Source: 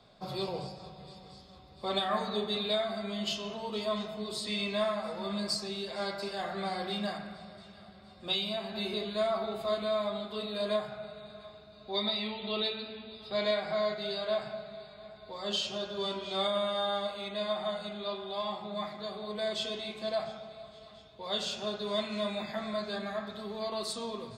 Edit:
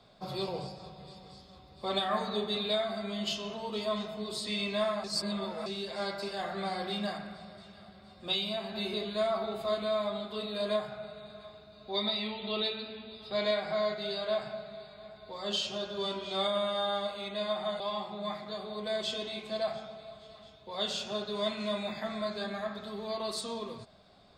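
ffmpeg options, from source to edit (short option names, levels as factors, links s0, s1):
-filter_complex "[0:a]asplit=4[s0][s1][s2][s3];[s0]atrim=end=5.042[s4];[s1]atrim=start=5.038:end=5.662,asetpts=PTS-STARTPTS,areverse[s5];[s2]atrim=start=5.658:end=17.802[s6];[s3]atrim=start=18.318[s7];[s4][s5]acrossfade=d=0.004:c1=hsin:c2=hsin[s8];[s8][s6]acrossfade=d=0.004:c1=hsin:c2=hsin[s9];[s9][s7]acrossfade=d=0.004:c1=hsin:c2=hsin"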